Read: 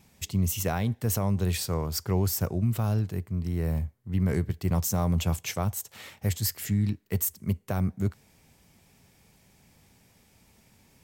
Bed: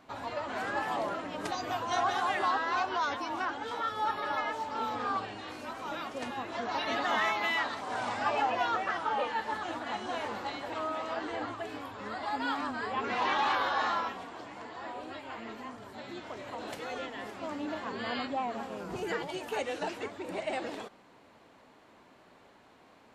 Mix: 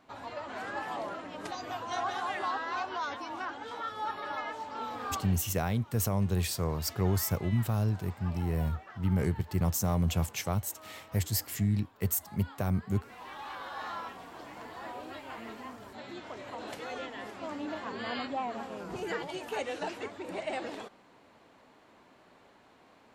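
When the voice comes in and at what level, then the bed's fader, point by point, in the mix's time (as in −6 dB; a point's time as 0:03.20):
4.90 s, −2.5 dB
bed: 0:05.31 −4 dB
0:05.59 −17.5 dB
0:13.19 −17.5 dB
0:14.48 −1 dB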